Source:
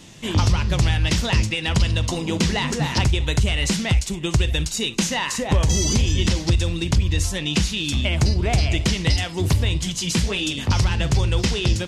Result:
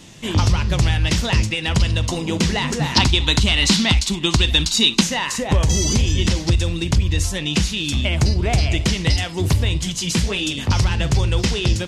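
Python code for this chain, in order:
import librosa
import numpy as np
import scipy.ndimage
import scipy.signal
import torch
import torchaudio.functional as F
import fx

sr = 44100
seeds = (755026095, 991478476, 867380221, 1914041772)

y = fx.graphic_eq(x, sr, hz=(125, 250, 500, 1000, 4000), db=(-4, 8, -5, 7, 11), at=(2.96, 5.01))
y = F.gain(torch.from_numpy(y), 1.5).numpy()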